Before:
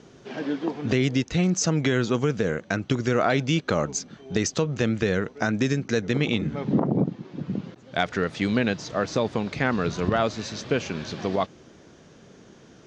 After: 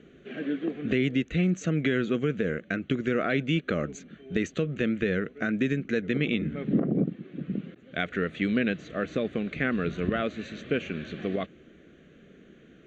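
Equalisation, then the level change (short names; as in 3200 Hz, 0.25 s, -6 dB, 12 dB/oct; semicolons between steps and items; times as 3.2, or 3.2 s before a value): air absorption 98 m; bell 110 Hz -13.5 dB 0.49 oct; fixed phaser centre 2200 Hz, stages 4; 0.0 dB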